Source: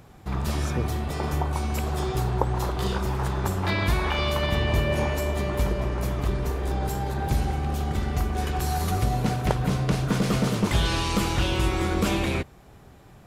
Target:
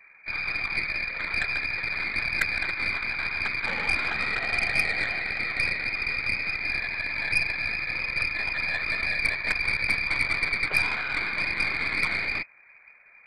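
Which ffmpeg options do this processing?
-af "afftfilt=real='hypot(re,im)*cos(2*PI*random(0))':imag='hypot(re,im)*sin(2*PI*random(1))':win_size=512:overlap=0.75,lowpass=f=2.1k:t=q:w=0.5098,lowpass=f=2.1k:t=q:w=0.6013,lowpass=f=2.1k:t=q:w=0.9,lowpass=f=2.1k:t=q:w=2.563,afreqshift=-2500,aeval=exprs='0.224*(cos(1*acos(clip(val(0)/0.224,-1,1)))-cos(1*PI/2))+0.0224*(cos(4*acos(clip(val(0)/0.224,-1,1)))-cos(4*PI/2))+0.0398*(cos(6*acos(clip(val(0)/0.224,-1,1)))-cos(6*PI/2))':c=same,volume=2.5dB"

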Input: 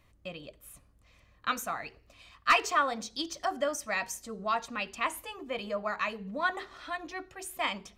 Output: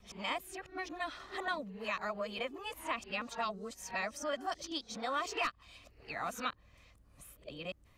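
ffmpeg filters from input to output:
-filter_complex "[0:a]areverse,acrossover=split=420|880|2500|5000[a][b][c][d][e];[a]acompressor=threshold=-46dB:ratio=4[f];[b]acompressor=threshold=-41dB:ratio=4[g];[c]acompressor=threshold=-41dB:ratio=4[h];[d]acompressor=threshold=-43dB:ratio=4[i];[e]acompressor=threshold=-54dB:ratio=4[j];[f][g][h][i][j]amix=inputs=5:normalize=0"

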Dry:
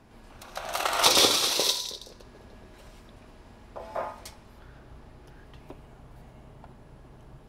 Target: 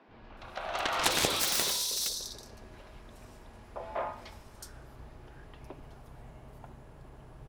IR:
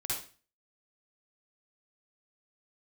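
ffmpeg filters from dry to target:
-filter_complex "[0:a]acrossover=split=230|4200[a][b][c];[a]adelay=80[d];[c]adelay=370[e];[d][b][e]amix=inputs=3:normalize=0,aeval=exprs='0.398*(cos(1*acos(clip(val(0)/0.398,-1,1)))-cos(1*PI/2))+0.158*(cos(7*acos(clip(val(0)/0.398,-1,1)))-cos(7*PI/2))':c=same,volume=-5dB"

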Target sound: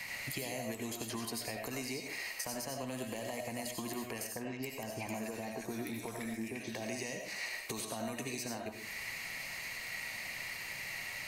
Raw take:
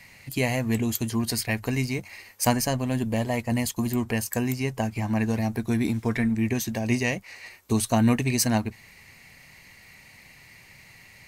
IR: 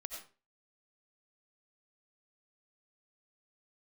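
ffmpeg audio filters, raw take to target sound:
-filter_complex "[0:a]lowshelf=f=260:g=-12,acrossover=split=270|830|4200[a][b][c][d];[a]acompressor=threshold=-46dB:ratio=4[e];[b]acompressor=threshold=-38dB:ratio=4[f];[c]acompressor=threshold=-45dB:ratio=4[g];[d]acompressor=threshold=-41dB:ratio=4[h];[e][f][g][h]amix=inputs=4:normalize=0,alimiter=level_in=4dB:limit=-24dB:level=0:latency=1,volume=-4dB,acompressor=threshold=-46dB:ratio=6,asettb=1/sr,asplit=3[i][j][k];[i]atrim=end=4.314[l];[j]atrim=start=4.31:end=6.74,asetpts=PTS-STARTPTS,afade=t=in:d=0.004:c=qsin,afade=t=out:st=2.426:d=0.004:c=qsin,acrossover=split=1400|5000[m][n][o];[n]adelay=50[p];[o]adelay=310[q];[m][p][q]amix=inputs=3:normalize=0,atrim=end_sample=107163[r];[k]atrim=start=6.736[s];[l][r]acrossfade=d=0.004:c1=hsin:c2=qsin[t];[t][s]acrossfade=d=0.004:c1=qsin:c2=hsin[u];[1:a]atrim=start_sample=2205[v];[u][v]afir=irnorm=-1:irlink=0,volume=12dB"

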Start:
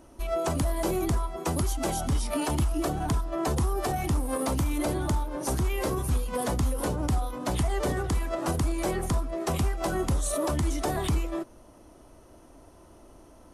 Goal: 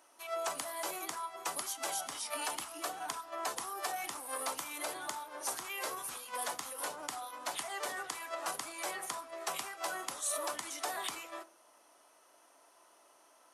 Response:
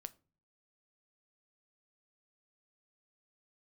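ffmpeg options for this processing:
-filter_complex "[0:a]highpass=970[a];[1:a]atrim=start_sample=2205[b];[a][b]afir=irnorm=-1:irlink=0,volume=3dB"

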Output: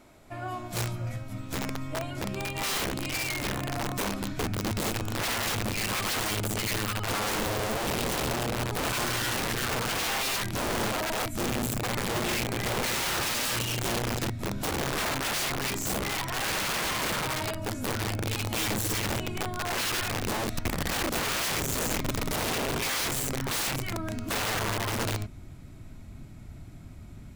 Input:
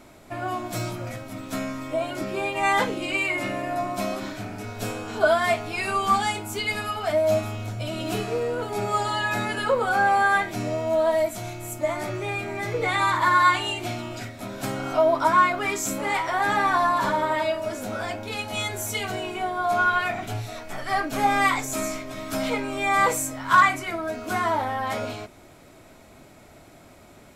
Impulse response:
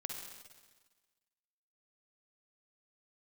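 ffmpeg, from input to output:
-af "asubboost=boost=10.5:cutoff=160,aeval=exprs='(mod(8.41*val(0)+1,2)-1)/8.41':c=same,volume=-6dB"

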